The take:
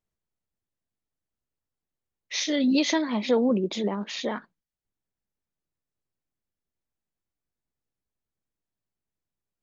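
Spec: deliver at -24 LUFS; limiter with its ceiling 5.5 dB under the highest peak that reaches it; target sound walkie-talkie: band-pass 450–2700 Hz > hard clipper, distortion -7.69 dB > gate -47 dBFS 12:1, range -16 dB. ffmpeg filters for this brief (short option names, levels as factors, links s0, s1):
-af "alimiter=limit=0.141:level=0:latency=1,highpass=450,lowpass=2700,asoftclip=type=hard:threshold=0.0237,agate=range=0.158:threshold=0.00447:ratio=12,volume=4.22"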